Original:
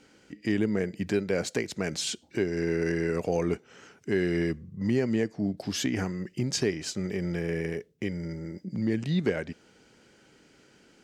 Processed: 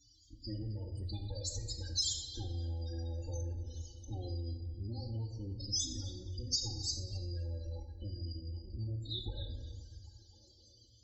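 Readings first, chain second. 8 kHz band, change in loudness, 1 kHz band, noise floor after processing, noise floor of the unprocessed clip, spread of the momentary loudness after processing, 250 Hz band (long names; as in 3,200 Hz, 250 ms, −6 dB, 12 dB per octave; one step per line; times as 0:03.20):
−2.0 dB, −10.0 dB, −16.5 dB, −63 dBFS, −60 dBFS, 11 LU, −20.5 dB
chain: lower of the sound and its delayed copy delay 3.7 ms
drawn EQ curve 110 Hz 0 dB, 170 Hz −30 dB, 290 Hz −22 dB, 1,100 Hz −25 dB, 2,100 Hz −24 dB, 3,700 Hz −5 dB
spectral peaks only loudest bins 16
high-pass filter 50 Hz
tuned comb filter 120 Hz, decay 1.6 s, mix 40%
rectangular room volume 550 cubic metres, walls mixed, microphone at 0.89 metres
downward compressor 4 to 1, threshold −48 dBFS, peak gain reduction 8 dB
high-shelf EQ 2,400 Hz +9 dB
echo through a band-pass that steps 262 ms, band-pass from 3,000 Hz, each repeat −0.7 octaves, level −9 dB
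level +11 dB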